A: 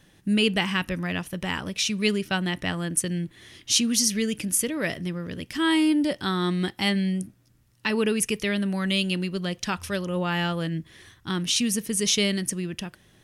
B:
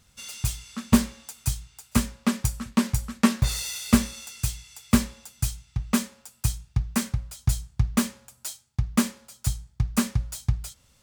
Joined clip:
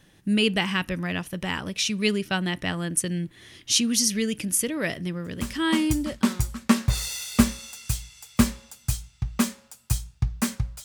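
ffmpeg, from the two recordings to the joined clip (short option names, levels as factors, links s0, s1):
-filter_complex "[0:a]apad=whole_dur=10.84,atrim=end=10.84,atrim=end=6.5,asetpts=PTS-STARTPTS[s0];[1:a]atrim=start=1.68:end=7.38,asetpts=PTS-STARTPTS[s1];[s0][s1]acrossfade=d=1.36:c1=qsin:c2=qsin"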